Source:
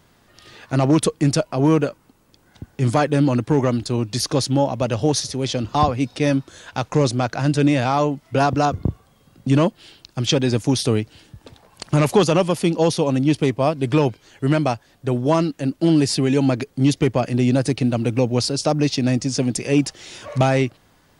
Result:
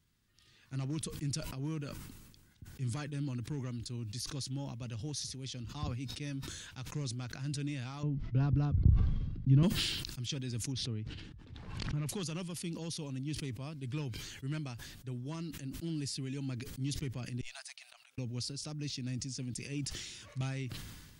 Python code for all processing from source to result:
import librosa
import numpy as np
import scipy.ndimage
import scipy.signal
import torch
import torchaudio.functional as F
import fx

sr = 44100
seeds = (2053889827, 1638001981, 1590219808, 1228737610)

y = fx.chain(x, sr, fx.lowpass(hz=5300.0, slope=24),
    fx.tilt_eq(slope=-4.0), at=(8.03, 9.63))
y = fx.chain(y, sr, fx.spacing_loss(db_at_10k=28),
    fx.pre_swell(db_per_s=38.0), at=(10.72, 12.09))
y = fx.chain(y, sr, fx.brickwall_highpass(low_hz=610.0),
    fx.gate_flip(shuts_db=-25.0, range_db=-33), at=(17.41, 18.18))
y = fx.tone_stack(y, sr, knobs='6-0-2')
y = fx.sustainer(y, sr, db_per_s=38.0)
y = y * librosa.db_to_amplitude(-2.5)